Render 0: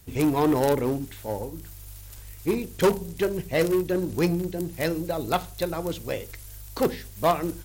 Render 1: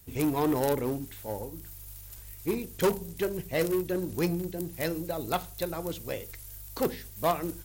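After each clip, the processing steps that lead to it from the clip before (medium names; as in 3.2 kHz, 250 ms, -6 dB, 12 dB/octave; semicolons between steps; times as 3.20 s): treble shelf 11 kHz +9 dB; trim -5 dB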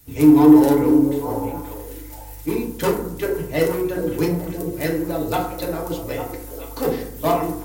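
repeats whose band climbs or falls 426 ms, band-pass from 370 Hz, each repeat 1.4 oct, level -6 dB; FDN reverb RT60 0.71 s, low-frequency decay 1.3×, high-frequency decay 0.4×, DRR -2.5 dB; trim +2.5 dB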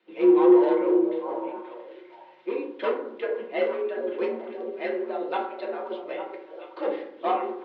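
mistuned SSB +55 Hz 240–3400 Hz; trim -5.5 dB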